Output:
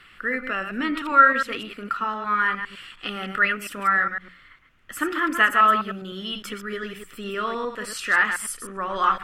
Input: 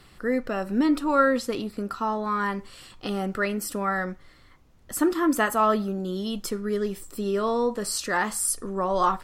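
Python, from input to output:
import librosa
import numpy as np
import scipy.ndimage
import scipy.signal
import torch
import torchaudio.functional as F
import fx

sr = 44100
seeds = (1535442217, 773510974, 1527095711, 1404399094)

y = fx.reverse_delay(x, sr, ms=102, wet_db=-7)
y = fx.band_shelf(y, sr, hz=2000.0, db=15.5, octaves=1.7)
y = fx.hum_notches(y, sr, base_hz=60, count=3)
y = y * librosa.db_to_amplitude(-6.5)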